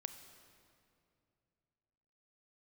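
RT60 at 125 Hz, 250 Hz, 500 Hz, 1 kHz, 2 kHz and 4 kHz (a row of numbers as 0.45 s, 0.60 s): 3.3 s, 3.0 s, 2.8 s, 2.3 s, 2.1 s, 1.8 s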